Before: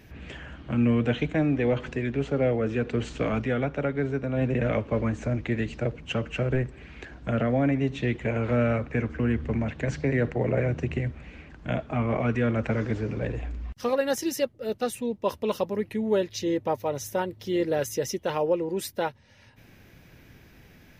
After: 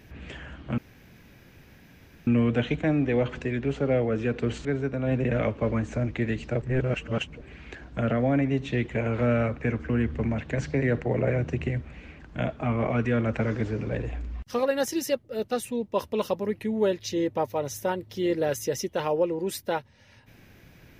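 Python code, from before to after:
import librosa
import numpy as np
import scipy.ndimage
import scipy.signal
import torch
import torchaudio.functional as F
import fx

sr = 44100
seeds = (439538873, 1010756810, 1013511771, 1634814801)

y = fx.edit(x, sr, fx.insert_room_tone(at_s=0.78, length_s=1.49),
    fx.cut(start_s=3.16, length_s=0.79),
    fx.reverse_span(start_s=5.92, length_s=0.79), tone=tone)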